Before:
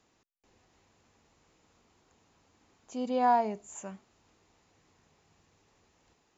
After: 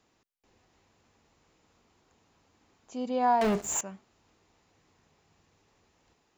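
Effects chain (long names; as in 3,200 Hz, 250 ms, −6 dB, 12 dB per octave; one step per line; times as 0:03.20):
parametric band 6,700 Hz −2.5 dB 0.29 octaves
0:03.41–0:03.81: leveller curve on the samples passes 5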